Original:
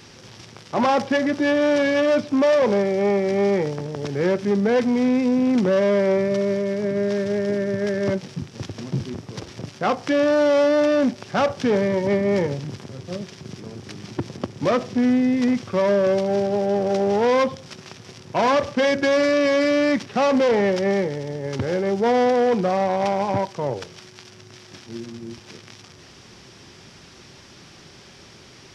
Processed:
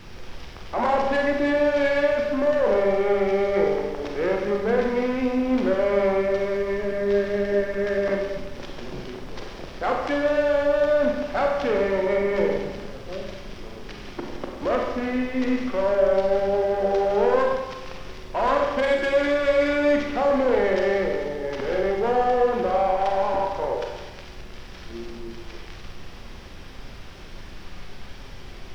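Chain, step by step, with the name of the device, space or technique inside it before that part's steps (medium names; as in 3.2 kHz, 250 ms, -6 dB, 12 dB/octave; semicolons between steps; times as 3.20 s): aircraft cabin announcement (band-pass 370–3600 Hz; saturation -18.5 dBFS, distortion -14 dB; brown noise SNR 14 dB); Schroeder reverb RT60 1.2 s, combs from 31 ms, DRR 0.5 dB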